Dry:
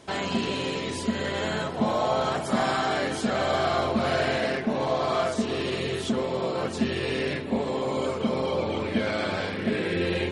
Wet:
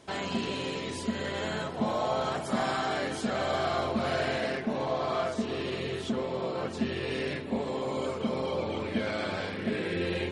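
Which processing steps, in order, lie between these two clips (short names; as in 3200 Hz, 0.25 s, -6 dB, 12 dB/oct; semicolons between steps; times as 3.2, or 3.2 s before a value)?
4.82–7.11 high shelf 8000 Hz -9.5 dB; gain -4.5 dB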